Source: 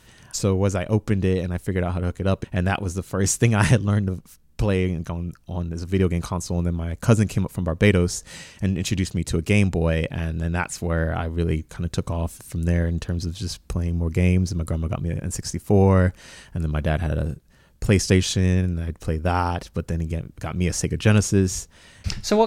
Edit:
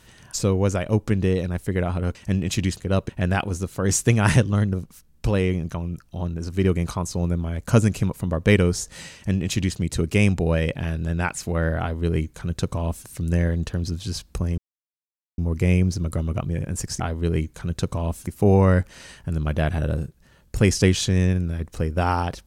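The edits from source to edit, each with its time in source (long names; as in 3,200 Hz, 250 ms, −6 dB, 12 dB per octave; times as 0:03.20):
0:08.49–0:09.14: duplicate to 0:02.15
0:11.15–0:12.42: duplicate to 0:15.55
0:13.93: splice in silence 0.80 s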